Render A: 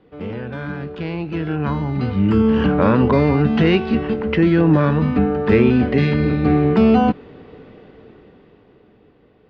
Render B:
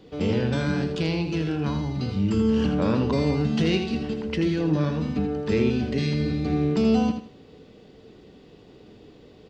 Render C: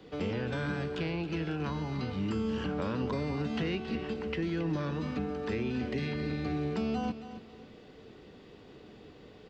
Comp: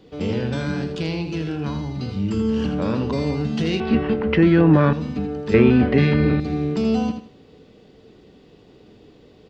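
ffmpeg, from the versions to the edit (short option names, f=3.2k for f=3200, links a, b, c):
-filter_complex "[0:a]asplit=2[a][b];[1:a]asplit=3[c][d][e];[c]atrim=end=3.802[f];[a]atrim=start=3.798:end=4.932[g];[d]atrim=start=4.928:end=5.542[h];[b]atrim=start=5.538:end=6.402[i];[e]atrim=start=6.398[j];[f][g]acrossfade=d=0.004:c1=hsin:c2=hsin[k];[k][h]acrossfade=d=0.004:c1=hsin:c2=hsin[l];[l][i]acrossfade=d=0.004:c1=hsin:c2=hsin[m];[m][j]acrossfade=d=0.004:c1=hsin:c2=hsin"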